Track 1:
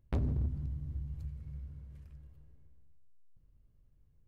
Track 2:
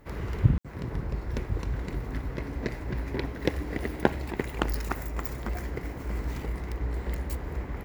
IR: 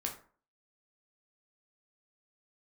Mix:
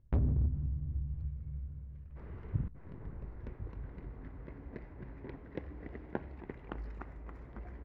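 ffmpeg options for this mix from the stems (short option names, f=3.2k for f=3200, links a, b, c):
-filter_complex "[0:a]volume=-1dB[a];[1:a]bandreject=f=60:t=h:w=6,bandreject=f=120:t=h:w=6,adelay=2100,volume=-16.5dB,asplit=2[b][c];[c]volume=-18dB[d];[2:a]atrim=start_sample=2205[e];[d][e]afir=irnorm=-1:irlink=0[f];[a][b][f]amix=inputs=3:normalize=0,lowpass=2k,lowshelf=f=230:g=4"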